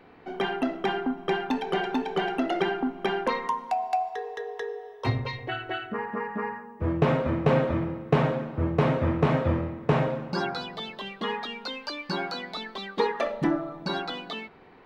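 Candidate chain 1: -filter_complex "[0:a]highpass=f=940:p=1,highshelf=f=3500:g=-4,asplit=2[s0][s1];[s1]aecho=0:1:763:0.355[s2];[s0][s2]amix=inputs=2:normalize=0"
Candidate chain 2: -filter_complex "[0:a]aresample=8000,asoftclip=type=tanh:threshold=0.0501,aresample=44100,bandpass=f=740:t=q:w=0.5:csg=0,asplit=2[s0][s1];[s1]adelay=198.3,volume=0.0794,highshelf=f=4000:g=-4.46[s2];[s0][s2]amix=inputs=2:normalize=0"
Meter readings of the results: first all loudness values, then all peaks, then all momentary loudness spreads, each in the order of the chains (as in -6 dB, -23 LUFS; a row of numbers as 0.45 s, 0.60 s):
-34.5 LUFS, -35.0 LUFS; -15.0 dBFS, -23.0 dBFS; 6 LU, 7 LU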